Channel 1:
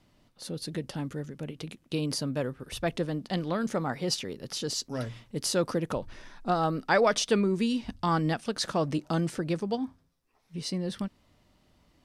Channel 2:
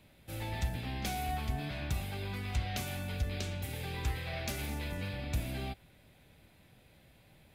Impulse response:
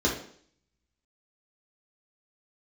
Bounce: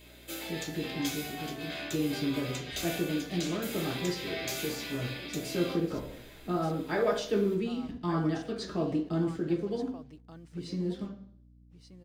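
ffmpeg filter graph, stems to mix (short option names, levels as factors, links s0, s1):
-filter_complex "[0:a]acrusher=bits=7:mix=0:aa=0.5,volume=0.282,asplit=3[s0][s1][s2];[s1]volume=0.376[s3];[s2]volume=0.282[s4];[1:a]acompressor=threshold=0.00891:ratio=6,highpass=310,aemphasis=mode=production:type=riaa,volume=1.12,asplit=2[s5][s6];[s6]volume=0.631[s7];[2:a]atrim=start_sample=2205[s8];[s3][s7]amix=inputs=2:normalize=0[s9];[s9][s8]afir=irnorm=-1:irlink=0[s10];[s4]aecho=0:1:1182:1[s11];[s0][s5][s10][s11]amix=inputs=4:normalize=0,highshelf=f=8400:g=-7.5,aeval=exprs='val(0)+0.00158*(sin(2*PI*60*n/s)+sin(2*PI*2*60*n/s)/2+sin(2*PI*3*60*n/s)/3+sin(2*PI*4*60*n/s)/4+sin(2*PI*5*60*n/s)/5)':c=same"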